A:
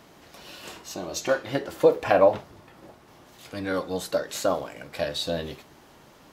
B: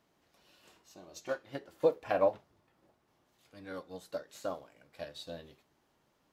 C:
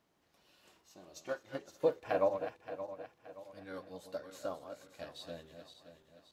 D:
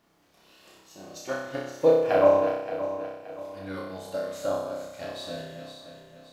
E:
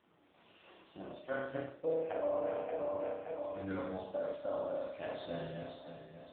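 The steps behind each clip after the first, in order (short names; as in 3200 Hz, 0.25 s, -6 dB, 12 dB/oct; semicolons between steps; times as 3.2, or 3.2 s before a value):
upward expander 1.5:1, over -37 dBFS; gain -8.5 dB
regenerating reverse delay 0.287 s, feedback 62%, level -8.5 dB; gain -3 dB
flutter echo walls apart 5.3 m, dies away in 0.87 s; gain +7 dB
reverse; compressor 5:1, threshold -33 dBFS, peak gain reduction 17.5 dB; reverse; AMR-NB 5.9 kbps 8000 Hz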